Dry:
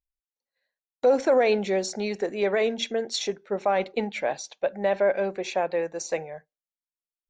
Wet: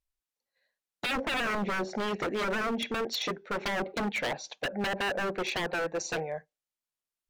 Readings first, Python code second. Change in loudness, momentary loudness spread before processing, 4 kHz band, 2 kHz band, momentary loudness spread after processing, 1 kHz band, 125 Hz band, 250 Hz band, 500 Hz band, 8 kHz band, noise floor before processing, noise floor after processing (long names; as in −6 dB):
−5.5 dB, 9 LU, −0.5 dB, +2.0 dB, 5 LU, −3.5 dB, can't be measured, −3.0 dB, −10.5 dB, −5.0 dB, below −85 dBFS, below −85 dBFS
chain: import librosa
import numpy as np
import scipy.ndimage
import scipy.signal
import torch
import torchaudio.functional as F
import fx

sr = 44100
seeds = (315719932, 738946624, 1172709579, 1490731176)

y = fx.env_lowpass_down(x, sr, base_hz=600.0, full_db=-19.5)
y = 10.0 ** (-28.0 / 20.0) * (np.abs((y / 10.0 ** (-28.0 / 20.0) + 3.0) % 4.0 - 2.0) - 1.0)
y = y * librosa.db_to_amplitude(3.0)